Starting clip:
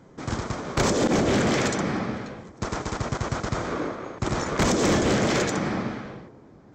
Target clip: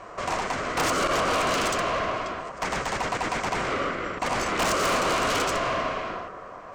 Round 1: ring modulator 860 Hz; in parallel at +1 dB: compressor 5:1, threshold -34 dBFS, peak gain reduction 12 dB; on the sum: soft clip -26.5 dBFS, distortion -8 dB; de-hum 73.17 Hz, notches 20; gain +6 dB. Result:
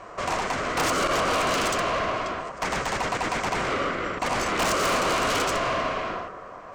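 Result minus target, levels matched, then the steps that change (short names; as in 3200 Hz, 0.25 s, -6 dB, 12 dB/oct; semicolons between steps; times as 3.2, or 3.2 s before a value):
compressor: peak gain reduction -7 dB
change: compressor 5:1, threshold -43 dBFS, peak gain reduction 19 dB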